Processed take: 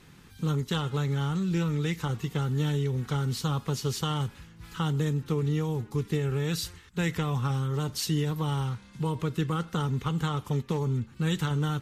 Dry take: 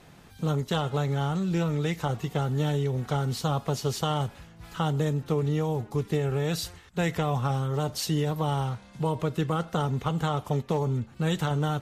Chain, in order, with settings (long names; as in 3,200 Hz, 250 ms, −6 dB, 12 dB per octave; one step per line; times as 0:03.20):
parametric band 660 Hz −14.5 dB 0.61 octaves